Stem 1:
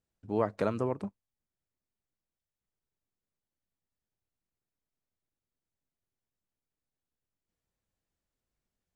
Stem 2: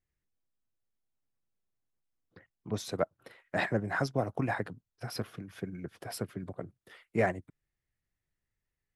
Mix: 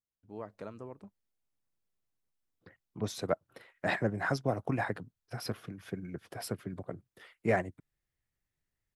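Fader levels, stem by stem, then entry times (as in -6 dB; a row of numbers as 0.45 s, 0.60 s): -14.0 dB, -0.5 dB; 0.00 s, 0.30 s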